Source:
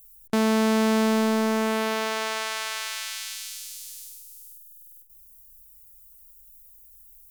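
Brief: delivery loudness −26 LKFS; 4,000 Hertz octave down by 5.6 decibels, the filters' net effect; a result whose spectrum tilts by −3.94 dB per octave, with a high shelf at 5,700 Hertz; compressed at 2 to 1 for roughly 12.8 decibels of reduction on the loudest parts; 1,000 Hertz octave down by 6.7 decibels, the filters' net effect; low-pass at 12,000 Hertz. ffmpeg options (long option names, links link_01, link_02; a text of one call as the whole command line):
ffmpeg -i in.wav -af "lowpass=12000,equalizer=frequency=1000:width_type=o:gain=-8,equalizer=frequency=4000:width_type=o:gain=-3.5,highshelf=frequency=5700:gain=-9,acompressor=threshold=-44dB:ratio=2,volume=13.5dB" out.wav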